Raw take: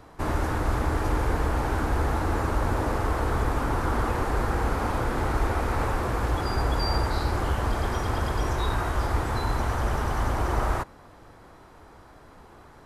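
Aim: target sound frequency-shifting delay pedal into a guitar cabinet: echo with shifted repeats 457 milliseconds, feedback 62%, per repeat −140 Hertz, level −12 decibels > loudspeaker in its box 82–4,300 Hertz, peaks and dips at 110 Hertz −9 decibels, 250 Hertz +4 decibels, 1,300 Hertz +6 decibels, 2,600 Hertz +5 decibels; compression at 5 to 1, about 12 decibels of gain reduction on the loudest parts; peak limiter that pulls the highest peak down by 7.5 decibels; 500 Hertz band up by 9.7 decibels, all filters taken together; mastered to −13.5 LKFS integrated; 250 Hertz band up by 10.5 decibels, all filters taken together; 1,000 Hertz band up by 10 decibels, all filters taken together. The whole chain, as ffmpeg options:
ffmpeg -i in.wav -filter_complex "[0:a]equalizer=frequency=250:width_type=o:gain=8,equalizer=frequency=500:width_type=o:gain=7.5,equalizer=frequency=1000:width_type=o:gain=7.5,acompressor=threshold=-30dB:ratio=5,alimiter=level_in=1.5dB:limit=-24dB:level=0:latency=1,volume=-1.5dB,asplit=8[link_01][link_02][link_03][link_04][link_05][link_06][link_07][link_08];[link_02]adelay=457,afreqshift=-140,volume=-12dB[link_09];[link_03]adelay=914,afreqshift=-280,volume=-16.2dB[link_10];[link_04]adelay=1371,afreqshift=-420,volume=-20.3dB[link_11];[link_05]adelay=1828,afreqshift=-560,volume=-24.5dB[link_12];[link_06]adelay=2285,afreqshift=-700,volume=-28.6dB[link_13];[link_07]adelay=2742,afreqshift=-840,volume=-32.8dB[link_14];[link_08]adelay=3199,afreqshift=-980,volume=-36.9dB[link_15];[link_01][link_09][link_10][link_11][link_12][link_13][link_14][link_15]amix=inputs=8:normalize=0,highpass=82,equalizer=frequency=110:width_type=q:width=4:gain=-9,equalizer=frequency=250:width_type=q:width=4:gain=4,equalizer=frequency=1300:width_type=q:width=4:gain=6,equalizer=frequency=2600:width_type=q:width=4:gain=5,lowpass=frequency=4300:width=0.5412,lowpass=frequency=4300:width=1.3066,volume=20.5dB" out.wav

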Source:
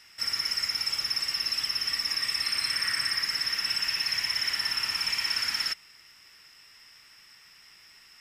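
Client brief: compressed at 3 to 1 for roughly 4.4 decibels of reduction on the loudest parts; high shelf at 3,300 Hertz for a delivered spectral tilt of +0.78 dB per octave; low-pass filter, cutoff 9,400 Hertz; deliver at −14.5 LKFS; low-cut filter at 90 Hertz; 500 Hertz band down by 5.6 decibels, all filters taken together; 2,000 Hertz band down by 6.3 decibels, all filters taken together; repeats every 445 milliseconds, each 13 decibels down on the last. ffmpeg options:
ffmpeg -i in.wav -af "highpass=90,lowpass=9400,equalizer=frequency=500:width_type=o:gain=-7,equalizer=frequency=2000:width_type=o:gain=-5.5,highshelf=frequency=3300:gain=-5,acompressor=threshold=-35dB:ratio=3,aecho=1:1:445|890|1335:0.224|0.0493|0.0108,volume=20.5dB" out.wav

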